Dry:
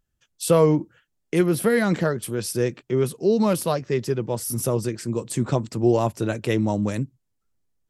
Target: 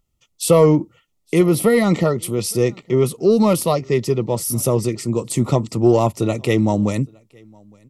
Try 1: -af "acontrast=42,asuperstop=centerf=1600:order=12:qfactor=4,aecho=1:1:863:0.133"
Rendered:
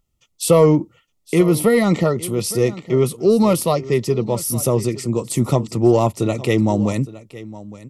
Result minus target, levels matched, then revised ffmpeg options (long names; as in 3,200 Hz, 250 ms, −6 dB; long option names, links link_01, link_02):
echo-to-direct +11.5 dB
-af "acontrast=42,asuperstop=centerf=1600:order=12:qfactor=4,aecho=1:1:863:0.0355"